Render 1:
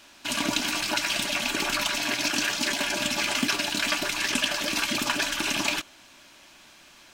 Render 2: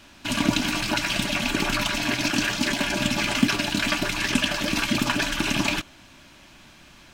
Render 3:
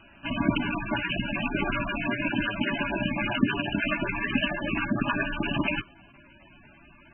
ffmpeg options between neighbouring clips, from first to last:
-af "bass=f=250:g=12,treble=f=4k:g=-4,volume=2dB"
-af "volume=-2dB" -ar 22050 -c:a libmp3lame -b:a 8k

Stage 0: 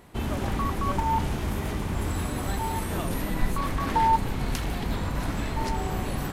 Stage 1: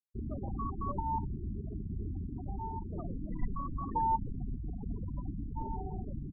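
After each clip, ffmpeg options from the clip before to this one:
-af "afftfilt=real='re*gte(hypot(re,im),0.1)':imag='im*gte(hypot(re,im),0.1)':win_size=1024:overlap=0.75,volume=-8.5dB"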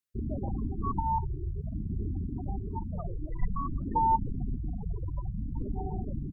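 -af "afftfilt=real='re*(1-between(b*sr/1024,210*pow(1700/210,0.5+0.5*sin(2*PI*0.54*pts/sr))/1.41,210*pow(1700/210,0.5+0.5*sin(2*PI*0.54*pts/sr))*1.41))':imag='im*(1-between(b*sr/1024,210*pow(1700/210,0.5+0.5*sin(2*PI*0.54*pts/sr))/1.41,210*pow(1700/210,0.5+0.5*sin(2*PI*0.54*pts/sr))*1.41))':win_size=1024:overlap=0.75,volume=5dB"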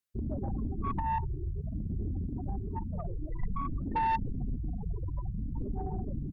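-af "asoftclip=type=tanh:threshold=-24dB"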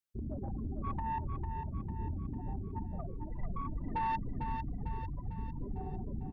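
-af "aecho=1:1:450|900|1350|1800|2250|2700:0.473|0.246|0.128|0.0665|0.0346|0.018,volume=-5dB"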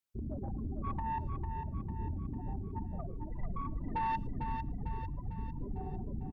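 -filter_complex "[0:a]asplit=2[a][b];[b]adelay=110,highpass=300,lowpass=3.4k,asoftclip=type=hard:threshold=-34dB,volume=-24dB[c];[a][c]amix=inputs=2:normalize=0"

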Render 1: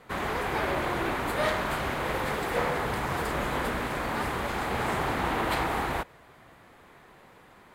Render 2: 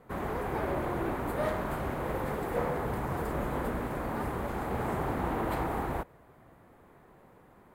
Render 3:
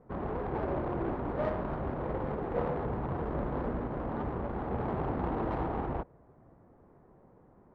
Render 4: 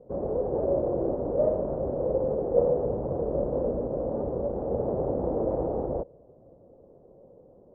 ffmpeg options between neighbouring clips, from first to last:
-af "equalizer=f=4k:t=o:w=3:g=-15"
-af "adynamicsmooth=sensitivity=1:basefreq=980"
-af "lowpass=f=540:t=q:w=4.9"

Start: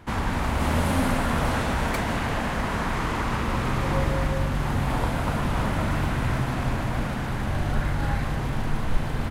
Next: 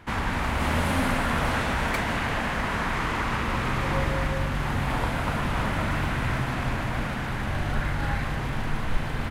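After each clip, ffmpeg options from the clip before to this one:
-af "equalizer=f=2.1k:t=o:w=1.9:g=5.5,volume=-2.5dB"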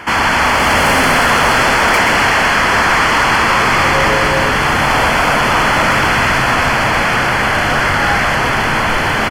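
-filter_complex "[0:a]asplit=2[a][b];[b]highpass=f=720:p=1,volume=23dB,asoftclip=type=tanh:threshold=-11.5dB[c];[a][c]amix=inputs=2:normalize=0,lowpass=f=7.9k:p=1,volume=-6dB,asuperstop=centerf=3800:order=12:qfactor=6.6,asplit=2[d][e];[e]asplit=7[f][g][h][i][j][k][l];[f]adelay=128,afreqshift=-110,volume=-6.5dB[m];[g]adelay=256,afreqshift=-220,volume=-11.9dB[n];[h]adelay=384,afreqshift=-330,volume=-17.2dB[o];[i]adelay=512,afreqshift=-440,volume=-22.6dB[p];[j]adelay=640,afreqshift=-550,volume=-27.9dB[q];[k]adelay=768,afreqshift=-660,volume=-33.3dB[r];[l]adelay=896,afreqshift=-770,volume=-38.6dB[s];[m][n][o][p][q][r][s]amix=inputs=7:normalize=0[t];[d][t]amix=inputs=2:normalize=0,volume=6dB"

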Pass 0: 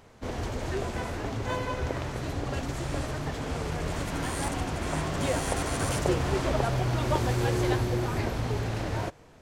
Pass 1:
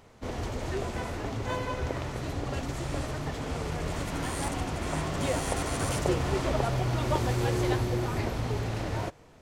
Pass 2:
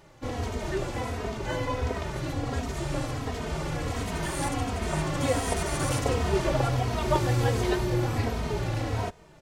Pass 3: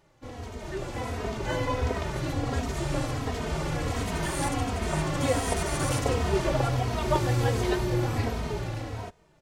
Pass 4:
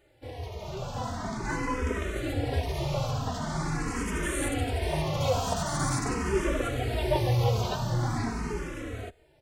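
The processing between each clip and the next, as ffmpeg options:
-af "bandreject=f=1.6k:w=22,volume=-1dB"
-filter_complex "[0:a]asplit=2[a][b];[b]adelay=2.9,afreqshift=-1.4[c];[a][c]amix=inputs=2:normalize=1,volume=5dB"
-af "dynaudnorm=f=110:g=17:m=10dB,volume=-8.5dB"
-filter_complex "[0:a]asplit=2[a][b];[b]aeval=exprs='0.282*sin(PI/2*2*val(0)/0.282)':c=same,volume=-7dB[c];[a][c]amix=inputs=2:normalize=0,asplit=2[d][e];[e]afreqshift=0.44[f];[d][f]amix=inputs=2:normalize=1,volume=-5dB"

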